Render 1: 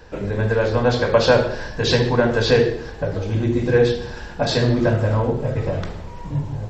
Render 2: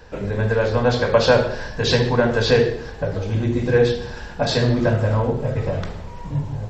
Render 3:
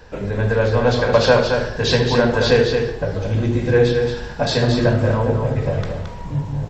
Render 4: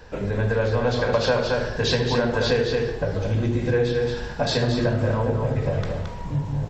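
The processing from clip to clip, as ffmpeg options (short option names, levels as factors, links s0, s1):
-af "equalizer=f=330:t=o:w=0.26:g=-5"
-af "aecho=1:1:221:0.501,volume=1.12"
-af "acompressor=threshold=0.126:ratio=2.5,volume=0.841"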